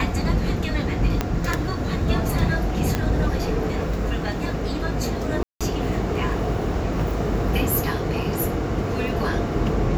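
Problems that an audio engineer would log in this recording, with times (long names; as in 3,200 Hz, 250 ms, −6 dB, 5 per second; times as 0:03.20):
0:01.21: click −7 dBFS
0:02.95: click −8 dBFS
0:05.43–0:05.61: drop-out 176 ms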